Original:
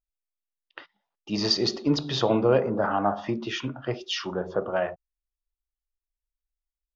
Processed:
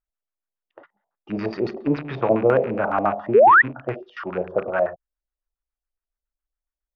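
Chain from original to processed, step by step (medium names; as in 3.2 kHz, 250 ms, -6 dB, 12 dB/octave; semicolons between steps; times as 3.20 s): rattle on loud lows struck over -38 dBFS, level -24 dBFS; LFO low-pass square 7.2 Hz 650–1500 Hz; painted sound rise, 3.34–3.62 s, 370–2000 Hz -11 dBFS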